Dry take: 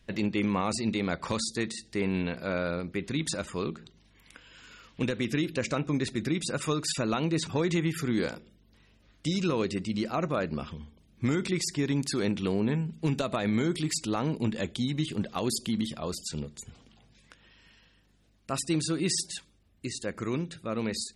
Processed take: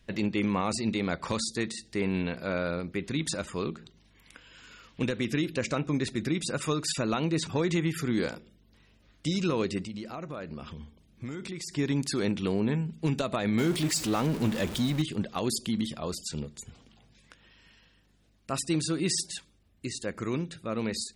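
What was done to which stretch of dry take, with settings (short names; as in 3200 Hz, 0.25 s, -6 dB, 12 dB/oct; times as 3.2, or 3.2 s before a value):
9.83–11.74 compressor 3:1, threshold -37 dBFS
13.58–15.02 zero-crossing step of -32.5 dBFS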